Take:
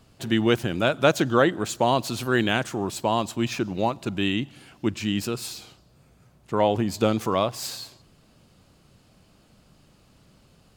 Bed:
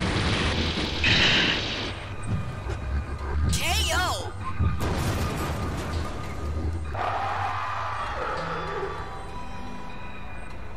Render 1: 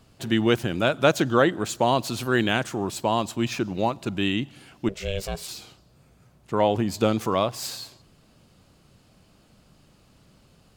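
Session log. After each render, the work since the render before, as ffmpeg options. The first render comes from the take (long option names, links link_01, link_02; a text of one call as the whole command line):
ffmpeg -i in.wav -filter_complex "[0:a]asplit=3[link_01][link_02][link_03];[link_01]afade=type=out:start_time=4.88:duration=0.02[link_04];[link_02]aeval=exprs='val(0)*sin(2*PI*290*n/s)':channel_layout=same,afade=type=in:start_time=4.88:duration=0.02,afade=type=out:start_time=5.47:duration=0.02[link_05];[link_03]afade=type=in:start_time=5.47:duration=0.02[link_06];[link_04][link_05][link_06]amix=inputs=3:normalize=0" out.wav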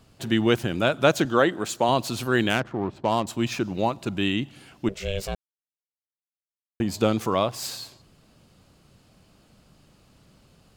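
ffmpeg -i in.wav -filter_complex "[0:a]asettb=1/sr,asplit=3[link_01][link_02][link_03];[link_01]atrim=end=1.254[link_04];[link_02]atrim=start=1.25:end=1.89,asetpts=PTS-STARTPTS,afade=type=in:duration=0.004:curve=qsin,afade=type=out:start_time=0.636:duration=0.004:curve=qsin,highpass=frequency=190:poles=1[link_05];[link_03]atrim=start=1.886[link_06];[link_04][link_05]acrossfade=duration=0.004:curve1=hsin:curve2=qsin[link_07];[link_07][link_06]acrossfade=duration=0.004:curve1=qsin:curve2=hsin,asettb=1/sr,asplit=3[link_08][link_09][link_10];[link_08]atrim=end=2.504[link_11];[link_09]atrim=start=2.5:end=3.27,asetpts=PTS-STARTPTS,afade=type=in:duration=0.004:curve=qsin,afade=type=out:start_time=0.766:duration=0.004:curve=qsin,adynamicsmooth=sensitivity=2.5:basefreq=980[link_12];[link_10]atrim=start=3.266[link_13];[link_11][link_12]acrossfade=duration=0.004:curve1=hsin:curve2=qsin[link_14];[link_14][link_13]acrossfade=duration=0.004:curve1=qsin:curve2=hsin,asplit=3[link_15][link_16][link_17];[link_15]atrim=end=5.35,asetpts=PTS-STARTPTS,afade=type=out:start_time=5.346:duration=0.004:curve=hsin[link_18];[link_16]atrim=start=5.35:end=6.8,asetpts=PTS-STARTPTS,volume=0[link_19];[link_17]atrim=start=6.8,asetpts=PTS-STARTPTS,afade=type=in:duration=0.004:curve=hsin[link_20];[link_18][link_19][link_20]concat=n=3:v=0:a=1" out.wav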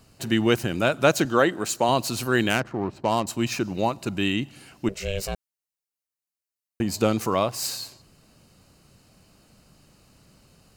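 ffmpeg -i in.wav -af "highshelf=frequency=4200:gain=6,bandreject=frequency=3400:width=7.3" out.wav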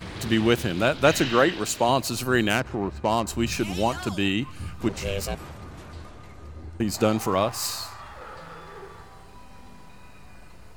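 ffmpeg -i in.wav -i bed.wav -filter_complex "[1:a]volume=-11.5dB[link_01];[0:a][link_01]amix=inputs=2:normalize=0" out.wav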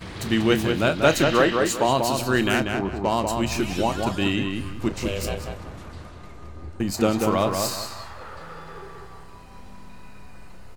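ffmpeg -i in.wav -filter_complex "[0:a]asplit=2[link_01][link_02];[link_02]adelay=31,volume=-13.5dB[link_03];[link_01][link_03]amix=inputs=2:normalize=0,asplit=2[link_04][link_05];[link_05]adelay=190,lowpass=frequency=3000:poles=1,volume=-4dB,asplit=2[link_06][link_07];[link_07]adelay=190,lowpass=frequency=3000:poles=1,volume=0.3,asplit=2[link_08][link_09];[link_09]adelay=190,lowpass=frequency=3000:poles=1,volume=0.3,asplit=2[link_10][link_11];[link_11]adelay=190,lowpass=frequency=3000:poles=1,volume=0.3[link_12];[link_06][link_08][link_10][link_12]amix=inputs=4:normalize=0[link_13];[link_04][link_13]amix=inputs=2:normalize=0" out.wav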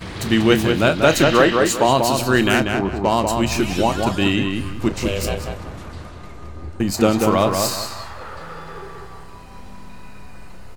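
ffmpeg -i in.wav -af "volume=5dB,alimiter=limit=-1dB:level=0:latency=1" out.wav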